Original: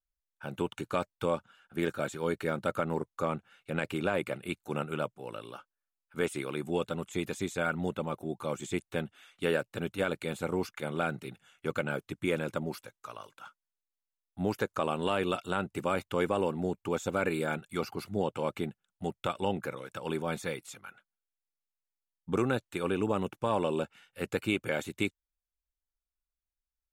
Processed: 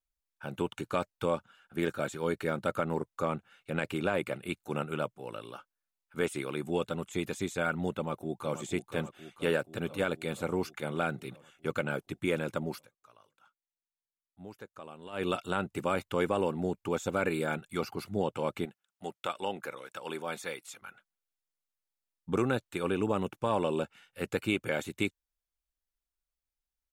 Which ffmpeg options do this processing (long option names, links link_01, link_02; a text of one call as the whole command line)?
ffmpeg -i in.wav -filter_complex "[0:a]asplit=2[link_01][link_02];[link_02]afade=type=in:start_time=7.96:duration=0.01,afade=type=out:start_time=8.6:duration=0.01,aecho=0:1:480|960|1440|1920|2400|2880|3360|3840|4320|4800:0.298538|0.208977|0.146284|0.102399|0.071679|0.0501753|0.0351227|0.0245859|0.0172101|0.0120471[link_03];[link_01][link_03]amix=inputs=2:normalize=0,asettb=1/sr,asplit=3[link_04][link_05][link_06];[link_04]atrim=end=18.654[link_07];[link_05]atrim=start=18.65:end=20.82,asetpts=PTS-STARTPTS,afade=type=in:duration=0.004:curve=qsin,afade=type=out:start_time=2.166:duration=0.004:curve=qsin,highpass=frequency=560:poles=1[link_08];[link_06]atrim=start=20.816[link_09];[link_07][link_08]acrossfade=duration=0.004:curve1=hsin:curve2=qsin[link_10];[link_10][link_09]acrossfade=duration=0.004:curve1=qsin:curve2=hsin,asplit=3[link_11][link_12][link_13];[link_11]atrim=end=12.88,asetpts=PTS-STARTPTS,afade=type=out:start_time=12.75:duration=0.13:silence=0.158489[link_14];[link_12]atrim=start=12.88:end=15.12,asetpts=PTS-STARTPTS,volume=-16dB[link_15];[link_13]atrim=start=15.12,asetpts=PTS-STARTPTS,afade=type=in:duration=0.13:silence=0.158489[link_16];[link_14][link_15][link_16]concat=n=3:v=0:a=1" out.wav